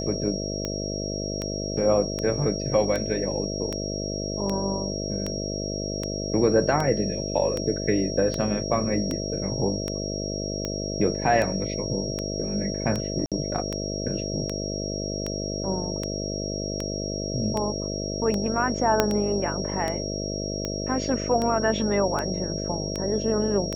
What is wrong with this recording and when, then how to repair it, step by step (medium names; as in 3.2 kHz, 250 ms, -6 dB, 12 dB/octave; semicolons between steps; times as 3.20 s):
buzz 50 Hz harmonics 13 -31 dBFS
tick 78 rpm -14 dBFS
whine 5.6 kHz -33 dBFS
13.26–13.32 s: dropout 57 ms
19.00 s: pop -4 dBFS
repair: de-click; band-stop 5.6 kHz, Q 30; de-hum 50 Hz, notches 13; interpolate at 13.26 s, 57 ms